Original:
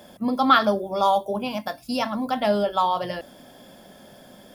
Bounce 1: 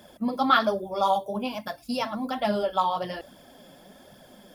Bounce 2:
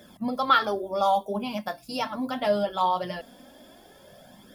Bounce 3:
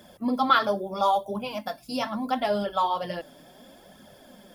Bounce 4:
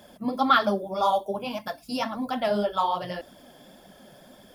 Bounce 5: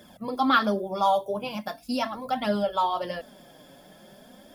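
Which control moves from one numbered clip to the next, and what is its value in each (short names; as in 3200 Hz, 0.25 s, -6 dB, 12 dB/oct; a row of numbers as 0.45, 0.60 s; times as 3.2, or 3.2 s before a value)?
flange, rate: 1.2, 0.22, 0.75, 1.8, 0.4 Hz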